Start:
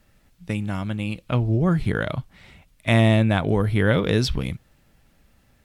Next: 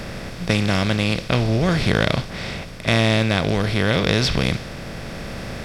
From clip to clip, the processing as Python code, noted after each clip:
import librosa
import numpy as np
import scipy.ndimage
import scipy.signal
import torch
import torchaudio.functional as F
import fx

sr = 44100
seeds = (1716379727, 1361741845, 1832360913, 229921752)

y = fx.bin_compress(x, sr, power=0.4)
y = fx.dynamic_eq(y, sr, hz=4300.0, q=0.75, threshold_db=-37.0, ratio=4.0, max_db=7)
y = fx.rider(y, sr, range_db=4, speed_s=2.0)
y = y * 10.0 ** (-3.5 / 20.0)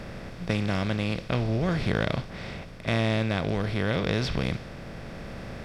y = fx.high_shelf(x, sr, hz=3300.0, db=-8.5)
y = y * 10.0 ** (-7.0 / 20.0)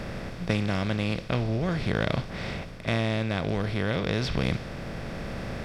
y = fx.rider(x, sr, range_db=4, speed_s=0.5)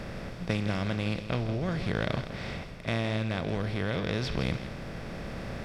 y = x + 10.0 ** (-11.5 / 20.0) * np.pad(x, (int(163 * sr / 1000.0), 0))[:len(x)]
y = y * 10.0 ** (-3.5 / 20.0)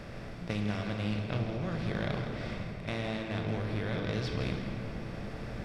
y = fx.room_shoebox(x, sr, seeds[0], volume_m3=200.0, walls='hard', distance_m=0.36)
y = fx.doppler_dist(y, sr, depth_ms=0.12)
y = y * 10.0 ** (-5.5 / 20.0)